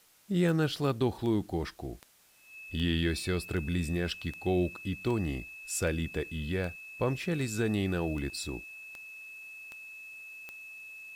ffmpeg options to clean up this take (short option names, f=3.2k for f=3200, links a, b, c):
-af "adeclick=t=4,bandreject=f=2.6k:w=30,agate=range=-21dB:threshold=-39dB"